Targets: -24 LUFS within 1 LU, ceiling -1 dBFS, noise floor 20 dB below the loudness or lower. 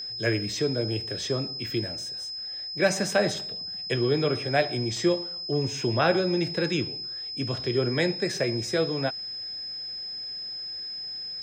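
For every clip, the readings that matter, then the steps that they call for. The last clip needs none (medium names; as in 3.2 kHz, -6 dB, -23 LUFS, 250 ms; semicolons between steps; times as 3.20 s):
steady tone 5.1 kHz; tone level -33 dBFS; loudness -27.5 LUFS; peak level -10.0 dBFS; loudness target -24.0 LUFS
-> band-stop 5.1 kHz, Q 30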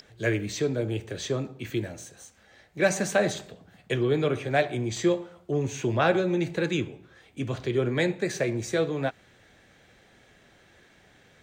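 steady tone not found; loudness -27.5 LUFS; peak level -9.5 dBFS; loudness target -24.0 LUFS
-> trim +3.5 dB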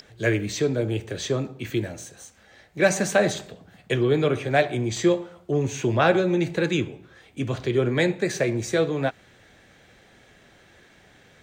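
loudness -24.0 LUFS; peak level -6.0 dBFS; noise floor -55 dBFS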